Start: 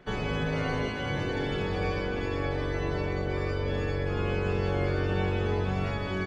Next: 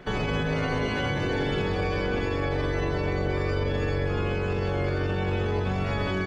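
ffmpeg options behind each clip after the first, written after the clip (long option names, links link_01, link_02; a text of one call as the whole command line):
ffmpeg -i in.wav -af "alimiter=level_in=2.5dB:limit=-24dB:level=0:latency=1:release=57,volume=-2.5dB,volume=8dB" out.wav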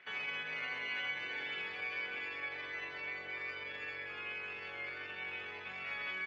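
ffmpeg -i in.wav -af "bandpass=frequency=2300:width_type=q:width=2.9:csg=0,volume=-1dB" out.wav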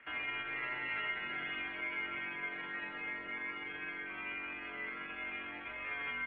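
ffmpeg -i in.wav -af "highpass=frequency=160:width_type=q:width=0.5412,highpass=frequency=160:width_type=q:width=1.307,lowpass=frequency=3200:width_type=q:width=0.5176,lowpass=frequency=3200:width_type=q:width=0.7071,lowpass=frequency=3200:width_type=q:width=1.932,afreqshift=-130,volume=1dB" out.wav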